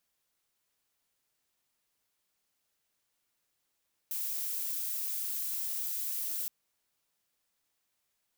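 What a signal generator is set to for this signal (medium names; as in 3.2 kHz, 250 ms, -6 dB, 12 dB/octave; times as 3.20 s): noise violet, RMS -35 dBFS 2.37 s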